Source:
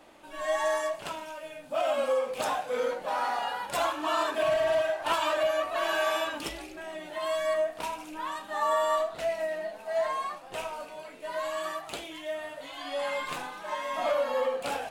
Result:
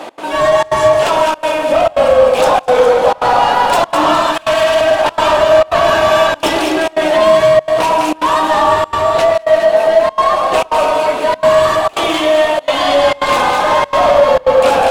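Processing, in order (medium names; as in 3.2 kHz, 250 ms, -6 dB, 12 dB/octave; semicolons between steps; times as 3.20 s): 4.22–4.81 s: amplifier tone stack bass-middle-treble 10-0-10; compression, threshold -34 dBFS, peak gain reduction 11 dB; overdrive pedal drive 35 dB, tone 2.2 kHz, clips at -4.5 dBFS; peaking EQ 1.8 kHz -6.5 dB 1.7 oct; on a send: echo whose repeats swap between lows and highs 103 ms, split 1.3 kHz, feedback 73%, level -2.5 dB; on the sum: trance gate "x.xxxxx.xxxxxx" 168 bpm -24 dB; in parallel at -8.5 dB: wavefolder -8.5 dBFS; on the sum: trim +2.5 dB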